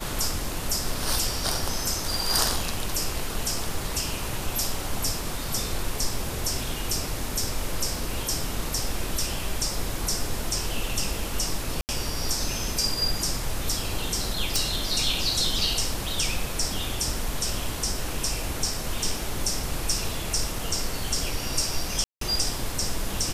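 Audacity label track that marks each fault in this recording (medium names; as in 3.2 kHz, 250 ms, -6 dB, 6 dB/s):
11.810000	11.890000	dropout 79 ms
14.560000	14.560000	pop
22.040000	22.210000	dropout 173 ms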